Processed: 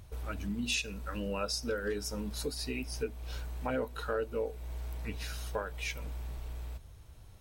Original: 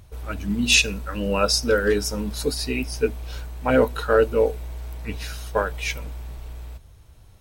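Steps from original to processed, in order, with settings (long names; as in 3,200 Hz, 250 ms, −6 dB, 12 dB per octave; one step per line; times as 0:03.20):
downward compressor 2.5 to 1, threshold −33 dBFS, peak gain reduction 13.5 dB
level −3.5 dB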